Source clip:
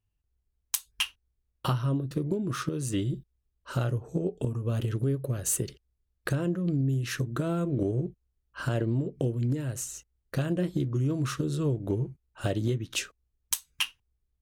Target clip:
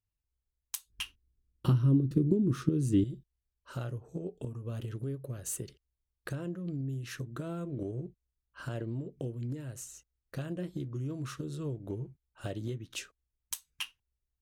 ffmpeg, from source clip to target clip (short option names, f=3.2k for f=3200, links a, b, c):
-filter_complex "[0:a]asettb=1/sr,asplit=3[a][b][c];[a]atrim=end=0.904[d];[b]atrim=start=0.9:end=3.04,asetpts=PTS-STARTPTS,afade=t=in:d=0.004:c=qsin,afade=t=out:st=2.136:d=0.004:c=qsin,lowshelf=f=460:t=q:w=1.5:g=11[e];[c]atrim=start=3.036[f];[d][e]acrossfade=d=0.004:c1=hsin:c2=qsin[g];[g][f]acrossfade=d=0.004:c1=qsin:c2=hsin,volume=-9dB"